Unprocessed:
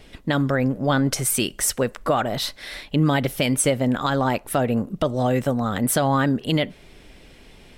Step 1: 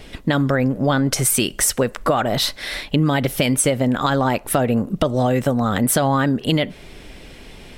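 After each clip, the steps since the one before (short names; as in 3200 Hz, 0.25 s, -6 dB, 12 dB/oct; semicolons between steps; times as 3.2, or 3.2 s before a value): compressor 3:1, threshold -23 dBFS, peak gain reduction 6.5 dB; gain +7.5 dB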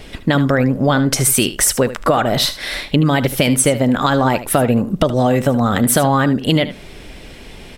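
echo 76 ms -13.5 dB; gain +3.5 dB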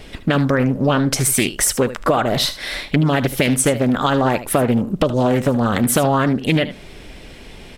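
Doppler distortion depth 0.38 ms; gain -2 dB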